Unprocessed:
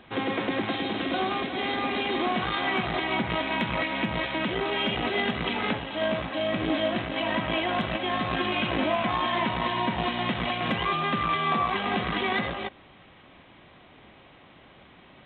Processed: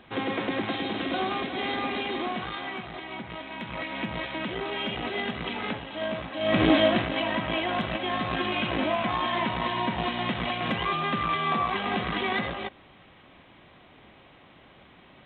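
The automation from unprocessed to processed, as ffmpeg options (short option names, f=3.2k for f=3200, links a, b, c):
-af "volume=17dB,afade=t=out:st=1.76:d=1.1:silence=0.334965,afade=t=in:st=3.55:d=0.45:silence=0.473151,afade=t=in:st=6.39:d=0.22:silence=0.266073,afade=t=out:st=6.61:d=0.69:silence=0.375837"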